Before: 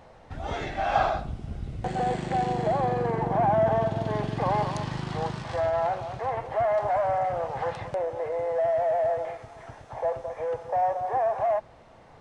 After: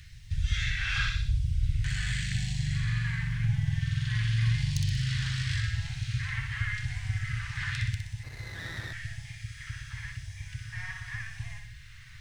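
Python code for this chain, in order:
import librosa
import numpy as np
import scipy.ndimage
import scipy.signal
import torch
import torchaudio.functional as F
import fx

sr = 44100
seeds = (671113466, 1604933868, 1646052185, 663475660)

p1 = fx.tracing_dist(x, sr, depth_ms=0.027)
p2 = scipy.signal.sosfilt(scipy.signal.ellip(3, 1.0, 70, [120.0, 1700.0], 'bandstop', fs=sr, output='sos'), p1)
p3 = p2 + fx.room_flutter(p2, sr, wall_m=10.6, rt60_s=0.67, dry=0)
p4 = fx.phaser_stages(p3, sr, stages=2, low_hz=420.0, high_hz=1300.0, hz=0.89, feedback_pct=25)
p5 = fx.rider(p4, sr, range_db=4, speed_s=0.5)
p6 = p4 + (p5 * 10.0 ** (0.0 / 20.0))
p7 = fx.quant_dither(p6, sr, seeds[0], bits=12, dither='none')
p8 = fx.running_max(p7, sr, window=9, at=(8.23, 8.93))
y = p8 * 10.0 ** (1.5 / 20.0)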